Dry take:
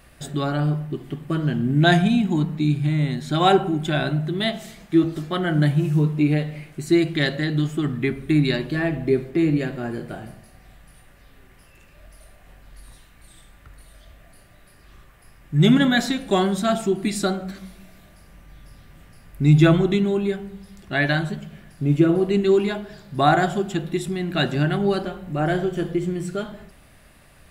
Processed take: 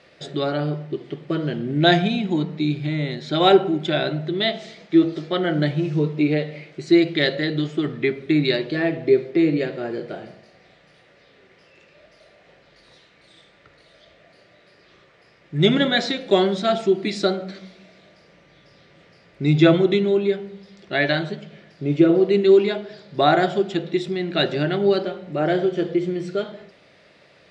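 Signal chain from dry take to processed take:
loudspeaker in its box 250–5,100 Hz, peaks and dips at 250 Hz −9 dB, 490 Hz +4 dB, 790 Hz −6 dB, 1,100 Hz −8 dB, 1,600 Hz −6 dB, 2,800 Hz −4 dB
level +5 dB

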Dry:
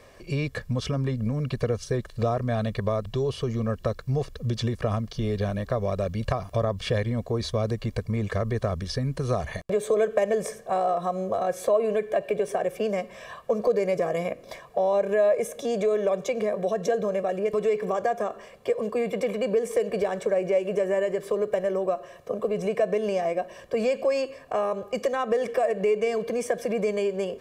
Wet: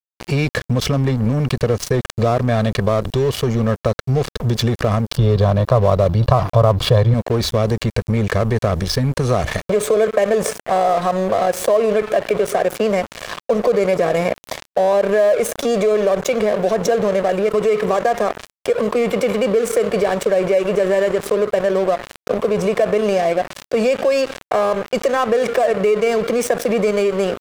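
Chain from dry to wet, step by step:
0:05.16–0:07.14: octave-band graphic EQ 125/250/500/1,000/2,000/4,000/8,000 Hz +11/−6/+4/+11/−9/+7/−11 dB
dead-zone distortion −38.5 dBFS
envelope flattener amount 50%
level +4.5 dB

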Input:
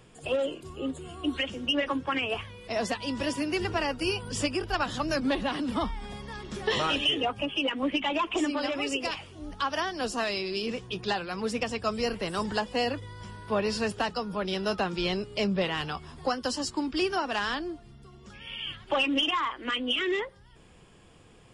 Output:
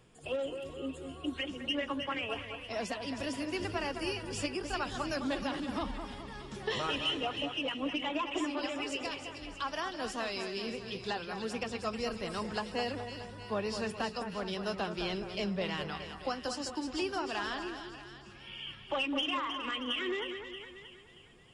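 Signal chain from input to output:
echo with a time of its own for lows and highs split 2,000 Hz, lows 210 ms, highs 315 ms, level −7.5 dB
level −7 dB

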